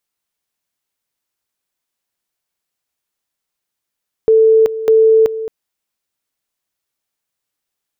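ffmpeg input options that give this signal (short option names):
-f lavfi -i "aevalsrc='pow(10,(-6-13.5*gte(mod(t,0.6),0.38))/20)*sin(2*PI*443*t)':d=1.2:s=44100"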